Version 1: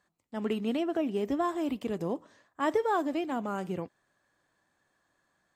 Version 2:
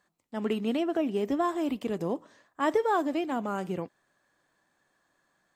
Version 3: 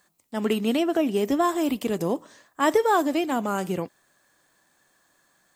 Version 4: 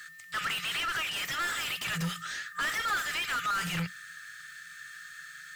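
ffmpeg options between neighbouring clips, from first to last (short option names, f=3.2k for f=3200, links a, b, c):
-af "equalizer=f=78:w=1.5:g=-7.5,volume=2dB"
-af "crystalizer=i=2:c=0,volume=5dB"
-filter_complex "[0:a]afftfilt=real='re*(1-between(b*sr/4096,180,1200))':imag='im*(1-between(b*sr/4096,180,1200))':win_size=4096:overlap=0.75,asplit=2[a][b];[b]highpass=f=720:p=1,volume=35dB,asoftclip=type=tanh:threshold=-16dB[c];[a][c]amix=inputs=2:normalize=0,lowpass=f=2.5k:p=1,volume=-6dB,aeval=exprs='val(0)+0.00794*sin(2*PI*1800*n/s)':c=same,volume=-6dB"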